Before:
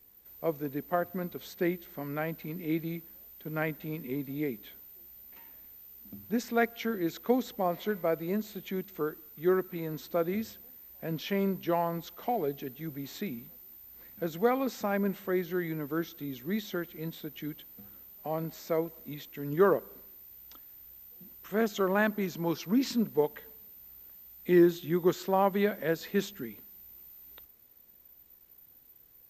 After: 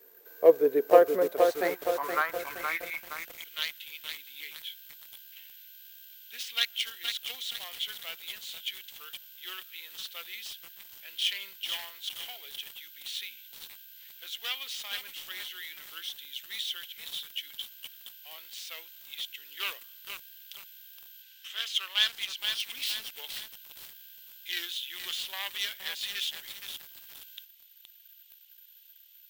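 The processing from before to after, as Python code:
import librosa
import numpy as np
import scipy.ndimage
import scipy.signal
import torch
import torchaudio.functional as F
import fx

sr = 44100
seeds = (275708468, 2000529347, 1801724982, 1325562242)

y = fx.tracing_dist(x, sr, depth_ms=0.17)
y = fx.weighting(y, sr, curve='A', at=(21.22, 22.38))
y = fx.quant_companded(y, sr, bits=8)
y = fx.filter_sweep_highpass(y, sr, from_hz=440.0, to_hz=3100.0, start_s=1.04, end_s=3.38, q=4.6)
y = fx.echo_crushed(y, sr, ms=469, feedback_pct=55, bits=7, wet_db=-5.0)
y = y * 10.0 ** (3.5 / 20.0)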